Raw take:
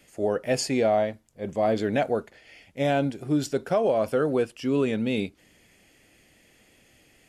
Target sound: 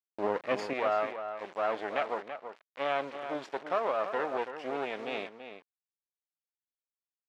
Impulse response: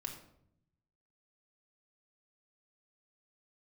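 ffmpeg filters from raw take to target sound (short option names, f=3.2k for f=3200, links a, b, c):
-filter_complex "[0:a]aeval=exprs='max(val(0),0)':c=same,acrusher=bits=6:mix=0:aa=0.000001,asetnsamples=n=441:p=0,asendcmd='0.73 highpass f 590',highpass=310,lowpass=2.7k,asplit=2[a][b];[b]adelay=332.4,volume=-9dB,highshelf=f=4k:g=-7.48[c];[a][c]amix=inputs=2:normalize=0"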